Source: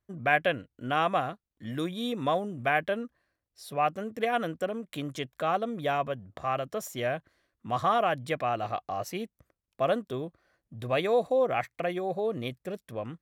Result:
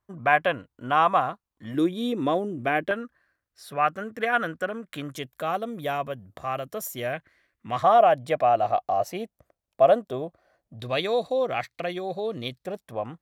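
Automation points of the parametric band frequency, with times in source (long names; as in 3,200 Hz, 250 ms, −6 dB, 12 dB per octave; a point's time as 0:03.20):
parametric band +11 dB 0.84 octaves
1,000 Hz
from 0:01.74 330 Hz
from 0:02.91 1,500 Hz
from 0:05.14 13,000 Hz
from 0:07.13 2,100 Hz
from 0:07.83 670 Hz
from 0:10.80 4,200 Hz
from 0:12.66 800 Hz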